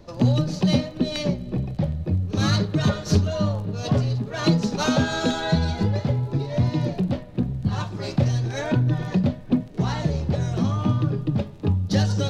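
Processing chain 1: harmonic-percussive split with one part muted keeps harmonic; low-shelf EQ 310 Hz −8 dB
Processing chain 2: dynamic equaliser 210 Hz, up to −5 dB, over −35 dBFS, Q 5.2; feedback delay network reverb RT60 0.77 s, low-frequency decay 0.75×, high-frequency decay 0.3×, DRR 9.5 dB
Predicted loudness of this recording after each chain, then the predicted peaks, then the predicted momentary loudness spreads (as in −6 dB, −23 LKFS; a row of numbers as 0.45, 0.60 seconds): −30.5, −24.0 LKFS; −14.0, −7.5 dBFS; 8, 5 LU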